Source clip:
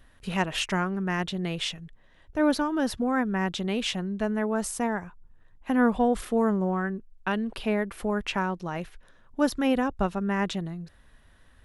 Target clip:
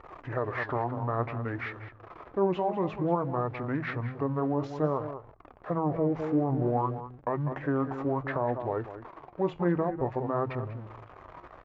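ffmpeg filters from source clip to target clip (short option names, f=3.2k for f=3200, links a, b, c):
-filter_complex "[0:a]aeval=exprs='val(0)+0.5*0.0133*sgn(val(0))':c=same,lowpass=1.7k,equalizer=f=310:w=3.7:g=-10,bandreject=f=50:t=h:w=6,bandreject=f=100:t=h:w=6,bandreject=f=150:t=h:w=6,bandreject=f=200:t=h:w=6,bandreject=f=250:t=h:w=6,asplit=2[a][b];[b]adelay=198.3,volume=-11dB,highshelf=f=4k:g=-4.46[c];[a][c]amix=inputs=2:normalize=0,aeval=exprs='val(0)+0.000891*(sin(2*PI*50*n/s)+sin(2*PI*2*50*n/s)/2+sin(2*PI*3*50*n/s)/3+sin(2*PI*4*50*n/s)/4+sin(2*PI*5*50*n/s)/5)':c=same,highpass=65,asetrate=28595,aresample=44100,atempo=1.54221,lowshelf=f=190:g=-12,alimiter=limit=-23dB:level=0:latency=1:release=58,flanger=delay=2.2:depth=9.2:regen=68:speed=0.57:shape=sinusoidal,volume=9dB"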